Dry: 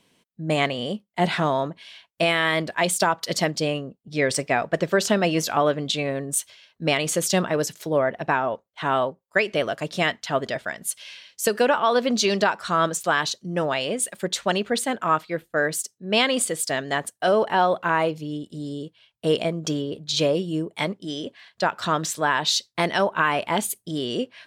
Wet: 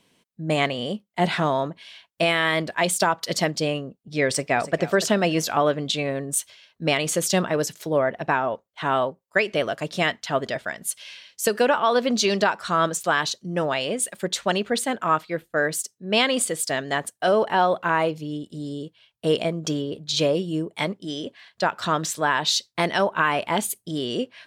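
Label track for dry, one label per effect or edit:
4.270000	4.790000	echo throw 290 ms, feedback 25%, level -15 dB

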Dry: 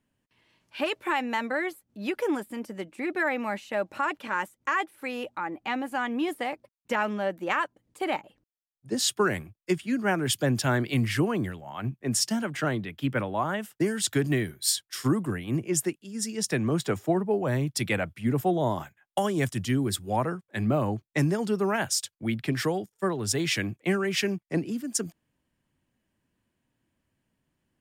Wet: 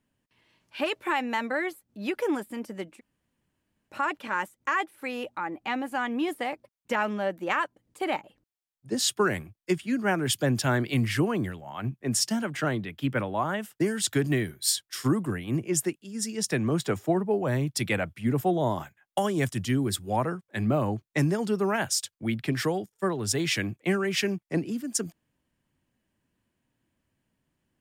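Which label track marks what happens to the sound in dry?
2.980000	3.910000	room tone, crossfade 0.06 s

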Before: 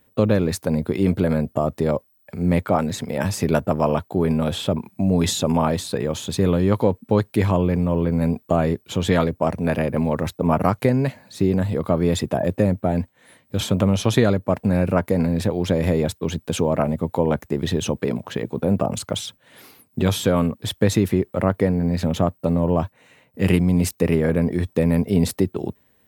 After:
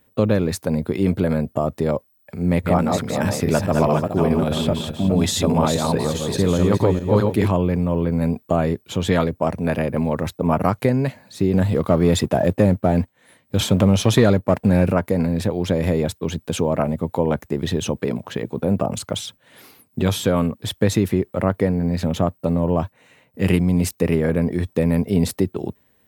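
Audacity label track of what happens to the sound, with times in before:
2.420000	7.480000	backward echo that repeats 208 ms, feedback 42%, level -3 dB
11.540000	14.930000	waveshaping leveller passes 1

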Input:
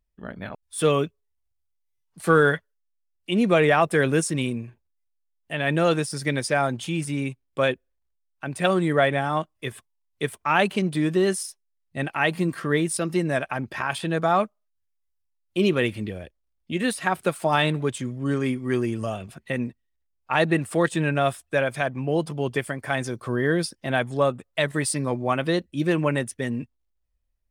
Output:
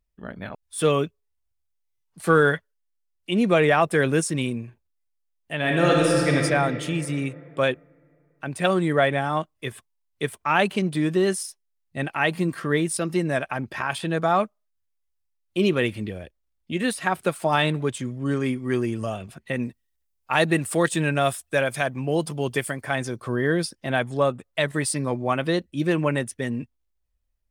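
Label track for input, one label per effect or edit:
5.570000	6.360000	reverb throw, RT60 2.8 s, DRR -2 dB
19.590000	22.830000	treble shelf 4.7 kHz +9.5 dB

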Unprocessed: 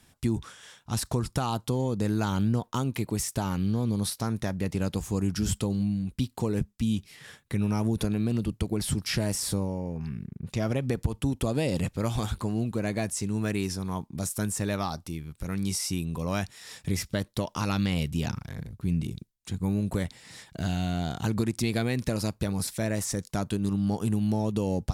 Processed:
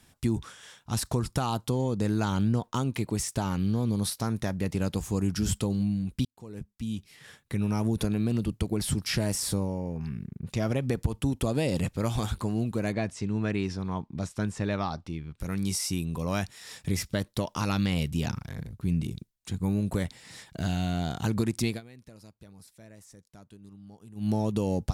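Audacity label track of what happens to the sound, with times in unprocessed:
1.710000	3.590000	peaking EQ 13 kHz -7.5 dB 0.37 oct
6.250000	8.270000	fade in equal-power
12.920000	15.400000	low-pass 3.9 kHz
21.670000	24.290000	dip -22 dB, fades 0.14 s

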